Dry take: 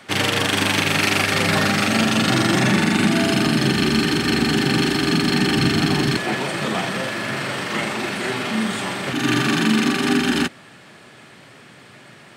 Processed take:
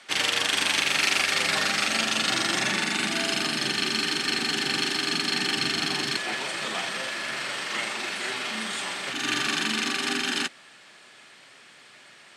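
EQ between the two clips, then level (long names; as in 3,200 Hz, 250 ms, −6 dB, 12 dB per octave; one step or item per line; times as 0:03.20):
high-pass filter 580 Hz 6 dB per octave
low-pass filter 9,000 Hz 12 dB per octave
high-shelf EQ 2,200 Hz +8 dB
−7.5 dB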